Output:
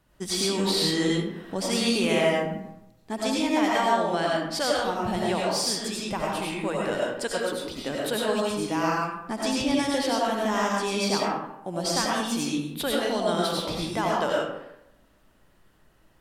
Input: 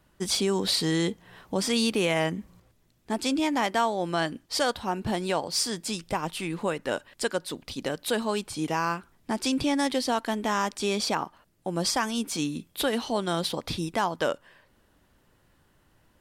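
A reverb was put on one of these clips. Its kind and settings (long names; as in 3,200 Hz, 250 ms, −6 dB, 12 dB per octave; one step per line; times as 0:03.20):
comb and all-pass reverb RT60 0.84 s, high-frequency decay 0.55×, pre-delay 55 ms, DRR −4 dB
level −3 dB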